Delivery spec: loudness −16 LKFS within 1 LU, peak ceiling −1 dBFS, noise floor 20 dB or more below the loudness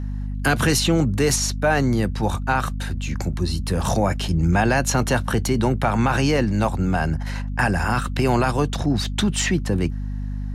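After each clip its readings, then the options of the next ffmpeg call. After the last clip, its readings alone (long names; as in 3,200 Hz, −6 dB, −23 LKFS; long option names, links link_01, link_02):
mains hum 50 Hz; hum harmonics up to 250 Hz; level of the hum −24 dBFS; integrated loudness −21.5 LKFS; sample peak −7.5 dBFS; target loudness −16.0 LKFS
→ -af "bandreject=frequency=50:width_type=h:width=6,bandreject=frequency=100:width_type=h:width=6,bandreject=frequency=150:width_type=h:width=6,bandreject=frequency=200:width_type=h:width=6,bandreject=frequency=250:width_type=h:width=6"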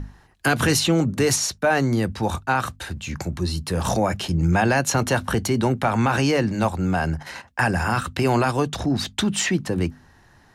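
mains hum none found; integrated loudness −22.0 LKFS; sample peak −8.0 dBFS; target loudness −16.0 LKFS
→ -af "volume=6dB"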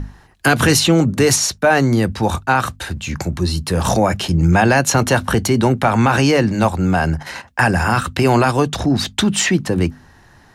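integrated loudness −16.0 LKFS; sample peak −2.0 dBFS; background noise floor −48 dBFS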